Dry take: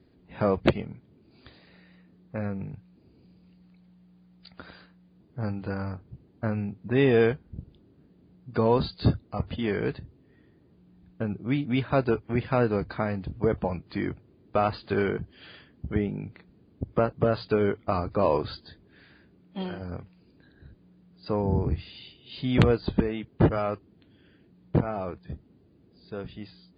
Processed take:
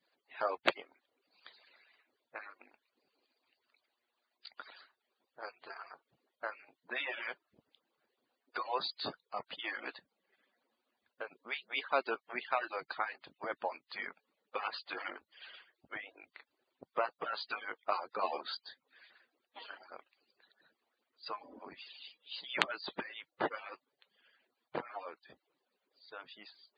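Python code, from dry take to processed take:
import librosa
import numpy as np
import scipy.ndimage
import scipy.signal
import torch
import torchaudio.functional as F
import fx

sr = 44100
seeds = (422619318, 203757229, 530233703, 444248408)

y = fx.hpss_only(x, sr, part='percussive')
y = scipy.signal.sosfilt(scipy.signal.butter(2, 880.0, 'highpass', fs=sr, output='sos'), y)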